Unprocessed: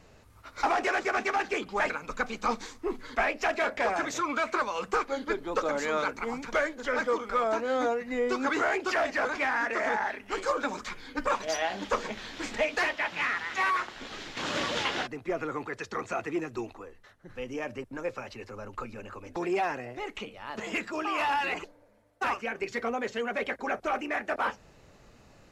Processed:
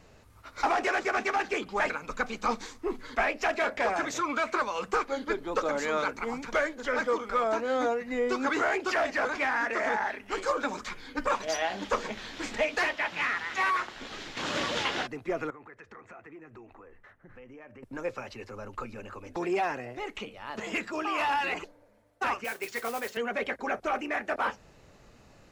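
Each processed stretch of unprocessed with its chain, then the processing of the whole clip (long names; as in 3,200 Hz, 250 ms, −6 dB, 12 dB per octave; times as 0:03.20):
0:15.50–0:17.83: high shelf with overshoot 2,900 Hz −11.5 dB, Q 1.5 + downward compressor 4 to 1, threshold −48 dBFS
0:22.44–0:23.17: high-pass filter 520 Hz 6 dB per octave + noise that follows the level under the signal 11 dB
whole clip: no processing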